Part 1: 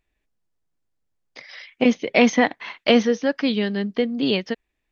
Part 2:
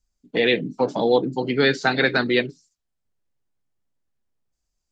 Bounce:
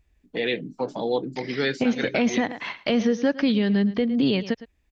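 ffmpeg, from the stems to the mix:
ffmpeg -i stem1.wav -i stem2.wav -filter_complex "[0:a]equalizer=frequency=64:width_type=o:width=2.6:gain=14.5,volume=2dB,asplit=2[link_01][link_02];[link_02]volume=-18.5dB[link_03];[1:a]volume=-6.5dB[link_04];[link_03]aecho=0:1:109:1[link_05];[link_01][link_04][link_05]amix=inputs=3:normalize=0,alimiter=limit=-12.5dB:level=0:latency=1:release=183" out.wav

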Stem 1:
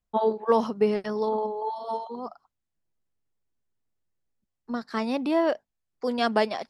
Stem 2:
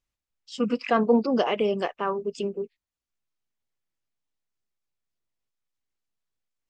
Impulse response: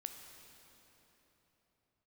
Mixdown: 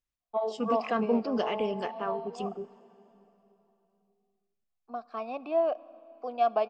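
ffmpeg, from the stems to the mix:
-filter_complex "[0:a]asplit=3[link_01][link_02][link_03];[link_01]bandpass=frequency=730:width_type=q:width=8,volume=0dB[link_04];[link_02]bandpass=frequency=1090:width_type=q:width=8,volume=-6dB[link_05];[link_03]bandpass=frequency=2440:width_type=q:width=8,volume=-9dB[link_06];[link_04][link_05][link_06]amix=inputs=3:normalize=0,equalizer=frequency=250:width_type=o:width=1.6:gain=4,adelay=200,volume=1.5dB,asplit=2[link_07][link_08];[link_08]volume=-8dB[link_09];[1:a]asubboost=boost=2.5:cutoff=210,volume=-8.5dB,asplit=2[link_10][link_11];[link_11]volume=-7.5dB[link_12];[2:a]atrim=start_sample=2205[link_13];[link_09][link_12]amix=inputs=2:normalize=0[link_14];[link_14][link_13]afir=irnorm=-1:irlink=0[link_15];[link_07][link_10][link_15]amix=inputs=3:normalize=0,aeval=exprs='0.168*(cos(1*acos(clip(val(0)/0.168,-1,1)))-cos(1*PI/2))+0.000944*(cos(7*acos(clip(val(0)/0.168,-1,1)))-cos(7*PI/2))':channel_layout=same"

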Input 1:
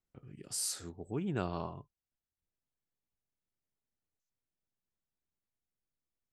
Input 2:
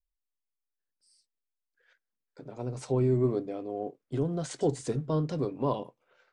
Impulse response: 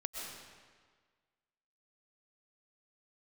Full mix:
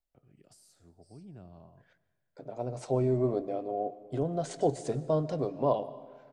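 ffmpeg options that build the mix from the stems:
-filter_complex "[0:a]acrossover=split=250[link_01][link_02];[link_02]acompressor=threshold=-50dB:ratio=6[link_03];[link_01][link_03]amix=inputs=2:normalize=0,volume=-11.5dB,asplit=3[link_04][link_05][link_06];[link_05]volume=-19.5dB[link_07];[link_06]volume=-21.5dB[link_08];[1:a]volume=-4.5dB,asplit=2[link_09][link_10];[link_10]volume=-13dB[link_11];[2:a]atrim=start_sample=2205[link_12];[link_07][link_11]amix=inputs=2:normalize=0[link_13];[link_13][link_12]afir=irnorm=-1:irlink=0[link_14];[link_08]aecho=0:1:91|182|273|364|455|546|637|728|819:1|0.58|0.336|0.195|0.113|0.0656|0.0381|0.0221|0.0128[link_15];[link_04][link_09][link_14][link_15]amix=inputs=4:normalize=0,equalizer=frequency=650:width=2.4:gain=12"

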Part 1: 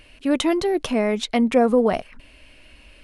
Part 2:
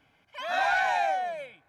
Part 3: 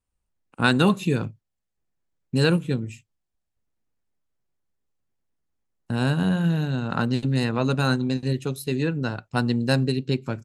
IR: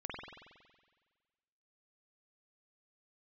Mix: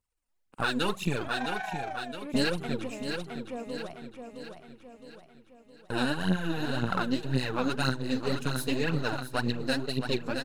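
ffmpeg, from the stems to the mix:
-filter_complex "[0:a]adelay=1300,volume=-15dB,asplit=2[link_01][link_02];[link_02]volume=-6.5dB[link_03];[1:a]tremolo=f=26:d=0.621,adelay=800,volume=-7.5dB[link_04];[2:a]aeval=exprs='if(lt(val(0),0),0.447*val(0),val(0))':channel_layout=same,lowshelf=frequency=270:gain=-8.5,aphaser=in_gain=1:out_gain=1:delay=4.3:decay=0.68:speed=1.9:type=triangular,volume=-0.5dB,asplit=3[link_05][link_06][link_07];[link_06]volume=-11dB[link_08];[link_07]apad=whole_len=191205[link_09];[link_01][link_09]sidechaingate=range=-33dB:threshold=-35dB:ratio=16:detection=peak[link_10];[link_03][link_08]amix=inputs=2:normalize=0,aecho=0:1:664|1328|1992|2656|3320|3984|4648:1|0.49|0.24|0.118|0.0576|0.0282|0.0138[link_11];[link_10][link_04][link_05][link_11]amix=inputs=4:normalize=0,alimiter=limit=-14.5dB:level=0:latency=1:release=457"

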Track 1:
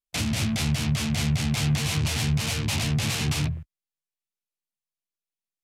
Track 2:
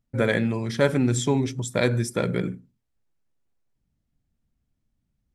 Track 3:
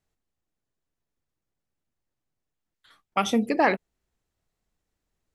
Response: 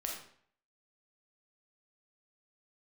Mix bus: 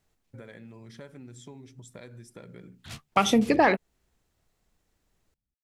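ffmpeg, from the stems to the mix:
-filter_complex "[0:a]adelay=100,volume=-13dB[link_01];[1:a]acompressor=threshold=-29dB:ratio=6,adelay=200,volume=-14dB[link_02];[2:a]acontrast=69,volume=0.5dB,asplit=2[link_03][link_04];[link_04]apad=whole_len=252824[link_05];[link_01][link_05]sidechaingate=range=-44dB:threshold=-50dB:ratio=16:detection=peak[link_06];[link_06][link_02][link_03]amix=inputs=3:normalize=0,acompressor=threshold=-21dB:ratio=2"

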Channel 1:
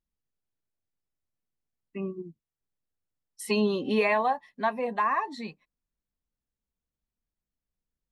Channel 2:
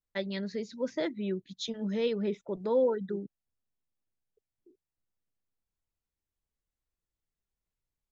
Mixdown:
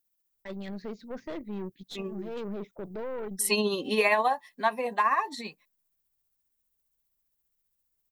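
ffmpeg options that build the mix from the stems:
ffmpeg -i stem1.wav -i stem2.wav -filter_complex "[0:a]aemphasis=mode=production:type=bsi,tremolo=f=15:d=0.39,volume=2.5dB,asplit=2[link_01][link_02];[1:a]alimiter=level_in=2.5dB:limit=-24dB:level=0:latency=1:release=15,volume=-2.5dB,adynamicsmooth=sensitivity=3:basefreq=4000,aeval=exprs='(tanh(50.1*val(0)+0.6)-tanh(0.6))/50.1':channel_layout=same,adelay=300,volume=2dB[link_03];[link_02]apad=whole_len=371117[link_04];[link_03][link_04]sidechaincompress=threshold=-39dB:ratio=8:attack=6.7:release=212[link_05];[link_01][link_05]amix=inputs=2:normalize=0" out.wav

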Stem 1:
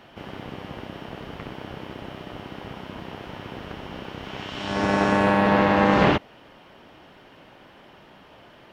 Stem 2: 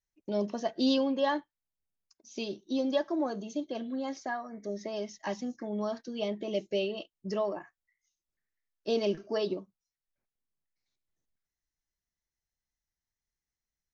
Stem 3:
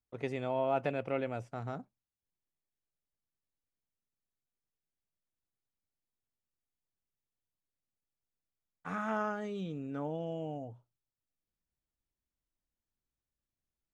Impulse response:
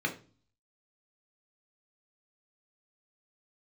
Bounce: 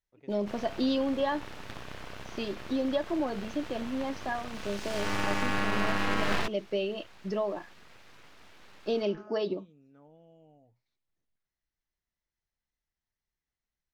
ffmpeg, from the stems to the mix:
-filter_complex "[0:a]lowshelf=frequency=370:gain=-10.5,bandreject=frequency=2900:width=6.6,aeval=exprs='abs(val(0))':channel_layout=same,adelay=300,volume=0dB[link_01];[1:a]lowpass=4100,volume=1.5dB[link_02];[2:a]volume=-19.5dB[link_03];[link_01][link_02][link_03]amix=inputs=3:normalize=0,acompressor=threshold=-26dB:ratio=2"

